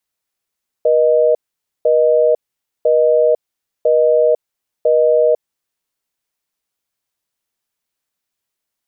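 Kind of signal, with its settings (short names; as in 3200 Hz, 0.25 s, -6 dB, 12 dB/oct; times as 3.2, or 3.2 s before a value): call progress tone busy tone, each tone -12 dBFS 4.61 s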